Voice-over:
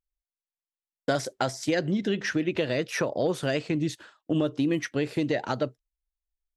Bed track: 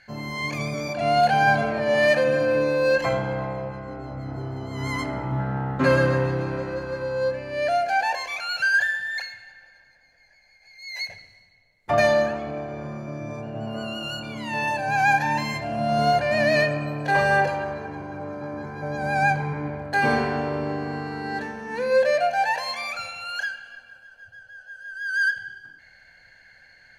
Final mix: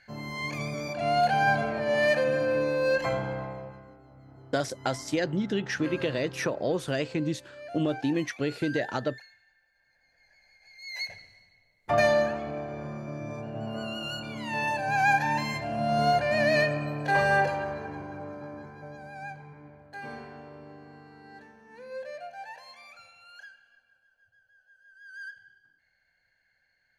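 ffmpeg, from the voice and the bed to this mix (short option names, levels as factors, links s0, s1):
-filter_complex "[0:a]adelay=3450,volume=0.794[s0];[1:a]volume=3.35,afade=t=out:st=3.25:d=0.74:silence=0.199526,afade=t=in:st=9.73:d=0.69:silence=0.16788,afade=t=out:st=17.93:d=1.18:silence=0.158489[s1];[s0][s1]amix=inputs=2:normalize=0"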